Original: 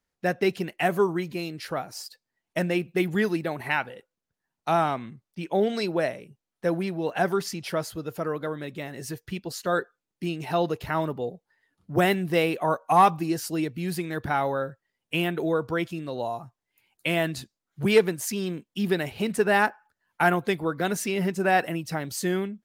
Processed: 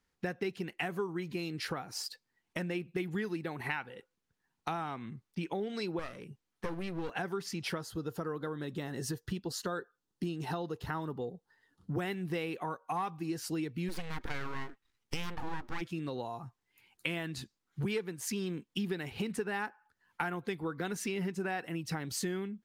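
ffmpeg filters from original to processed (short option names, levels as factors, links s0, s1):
-filter_complex "[0:a]asettb=1/sr,asplit=3[s0][s1][s2];[s0]atrim=end=5.994[s3];[s1]atrim=start=5.99:end=7.1,asetpts=PTS-STARTPTS,afade=t=in:d=0.004:c=qsin,afade=t=out:st=1.106:d=0.004:c=qsin,aeval=exprs='clip(val(0),-1,0.015)':c=same[s4];[s2]atrim=start=7.096[s5];[s3][s4]acrossfade=d=0.004:c1=hsin:c2=qsin[s6];[s6][s5]acrossfade=d=0.004:c1=qsin:c2=hsin,asettb=1/sr,asplit=3[s7][s8][s9];[s7]atrim=end=7.784[s10];[s8]atrim=start=7.78:end=11.92,asetpts=PTS-STARTPTS,afade=t=in:d=0.004:c=qsin,afade=t=out:st=4.136:d=0.004:c=qsin,equalizer=f=2300:w=3.3:g=-11.5[s11];[s9]atrim=start=11.916[s12];[s10][s11]acrossfade=d=0.004:c1=hsin:c2=qsin[s13];[s13][s12]acrossfade=d=0.004:c1=qsin:c2=hsin,asplit=3[s14][s15][s16];[s14]afade=t=out:st=13.88:d=0.02[s17];[s15]aeval=exprs='abs(val(0))':c=same,afade=t=in:st=13.88:d=0.02,afade=t=out:st=15.8:d=0.02[s18];[s16]afade=t=in:st=15.8:d=0.02[s19];[s17][s18][s19]amix=inputs=3:normalize=0,highshelf=f=9500:g=-8,acompressor=threshold=0.0141:ratio=5,equalizer=f=620:t=o:w=0.31:g=-10.5,volume=1.5"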